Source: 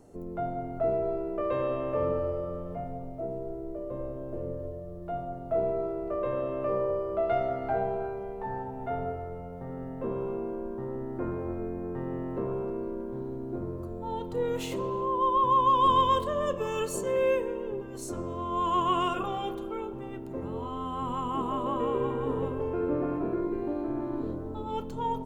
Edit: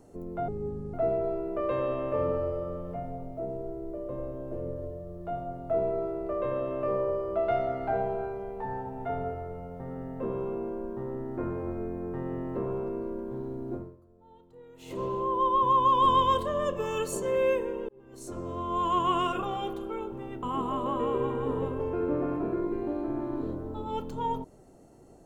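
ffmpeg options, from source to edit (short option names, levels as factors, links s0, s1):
-filter_complex "[0:a]asplit=7[s0][s1][s2][s3][s4][s5][s6];[s0]atrim=end=0.484[s7];[s1]atrim=start=0.48:end=0.75,asetpts=PTS-STARTPTS,asetrate=26019,aresample=44100,atrim=end_sample=20181,asetpts=PTS-STARTPTS[s8];[s2]atrim=start=0.746:end=13.84,asetpts=PTS-STARTPTS,afade=t=out:st=12.804:d=0.29:c=qua:silence=0.0841395[s9];[s3]atrim=start=13.84:end=14.54,asetpts=PTS-STARTPTS,volume=0.0841[s10];[s4]atrim=start=14.54:end=17.7,asetpts=PTS-STARTPTS,afade=t=in:d=0.29:c=qua:silence=0.0841395,afade=t=out:st=3.156:d=0.004:c=hsin[s11];[s5]atrim=start=17.7:end=20.242,asetpts=PTS-STARTPTS,afade=t=in:d=0.64[s12];[s6]atrim=start=21.228[s13];[s7][s8]acrossfade=d=0.004:c1=hsin:c2=hsin[s14];[s9][s10][s11][s12]concat=n=4:v=0:a=1[s15];[s14][s15]acrossfade=d=0.004:c1=hsin:c2=hsin[s16];[s16][s13]acrossfade=d=0.004:c1=hsin:c2=hsin"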